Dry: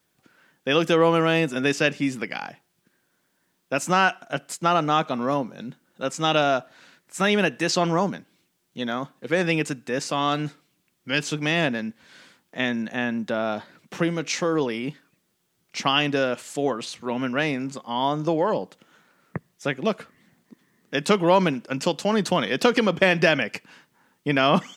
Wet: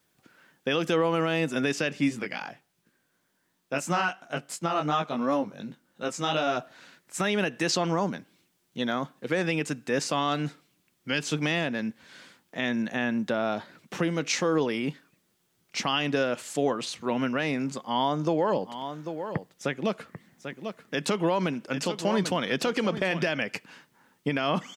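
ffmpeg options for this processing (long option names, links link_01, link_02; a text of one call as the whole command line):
ffmpeg -i in.wav -filter_complex "[0:a]asplit=3[link_01][link_02][link_03];[link_01]afade=type=out:start_time=2.08:duration=0.02[link_04];[link_02]flanger=delay=17.5:depth=3.7:speed=2.8,afade=type=in:start_time=2.08:duration=0.02,afade=type=out:start_time=6.56:duration=0.02[link_05];[link_03]afade=type=in:start_time=6.56:duration=0.02[link_06];[link_04][link_05][link_06]amix=inputs=3:normalize=0,asplit=3[link_07][link_08][link_09];[link_07]afade=type=out:start_time=18.6:duration=0.02[link_10];[link_08]aecho=1:1:792:0.251,afade=type=in:start_time=18.6:duration=0.02,afade=type=out:start_time=23.27:duration=0.02[link_11];[link_09]afade=type=in:start_time=23.27:duration=0.02[link_12];[link_10][link_11][link_12]amix=inputs=3:normalize=0,alimiter=limit=-15dB:level=0:latency=1:release=200" out.wav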